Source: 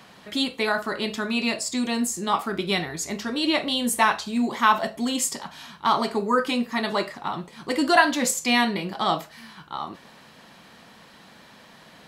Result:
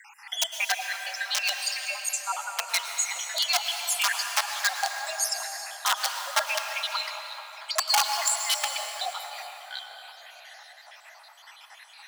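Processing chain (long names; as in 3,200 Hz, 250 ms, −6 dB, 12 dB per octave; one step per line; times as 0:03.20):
time-frequency cells dropped at random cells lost 72%
in parallel at +2 dB: downward compressor 16 to 1, threshold −37 dBFS, peak gain reduction 23.5 dB
on the sum: parametric band 1,000 Hz −9 dB 0.52 octaves
wrap-around overflow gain 16 dB
frequency shifter +120 Hz
Butterworth high-pass 640 Hz 72 dB per octave
on a send at −4 dB: convolution reverb RT60 4.4 s, pre-delay 98 ms
on the sum: dynamic equaliser 5,600 Hz, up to +6 dB, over −45 dBFS, Q 1.7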